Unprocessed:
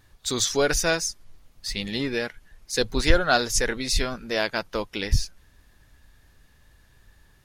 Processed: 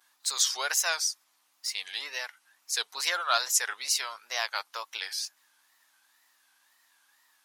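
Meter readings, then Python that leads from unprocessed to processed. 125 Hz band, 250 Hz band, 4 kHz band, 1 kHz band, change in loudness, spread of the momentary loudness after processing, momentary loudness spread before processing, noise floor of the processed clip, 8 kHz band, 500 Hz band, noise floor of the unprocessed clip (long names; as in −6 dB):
below −40 dB, below −30 dB, −2.0 dB, −3.5 dB, −4.0 dB, 11 LU, 10 LU, −70 dBFS, 0.0 dB, −16.5 dB, −59 dBFS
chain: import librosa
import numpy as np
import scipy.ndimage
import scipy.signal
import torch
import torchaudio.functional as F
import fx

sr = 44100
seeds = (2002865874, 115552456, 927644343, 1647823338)

y = fx.wow_flutter(x, sr, seeds[0], rate_hz=2.1, depth_cents=150.0)
y = fx.high_shelf(y, sr, hz=3200.0, db=10.0)
y = fx.add_hum(y, sr, base_hz=60, snr_db=22)
y = fx.ladder_highpass(y, sr, hz=760.0, resonance_pct=40)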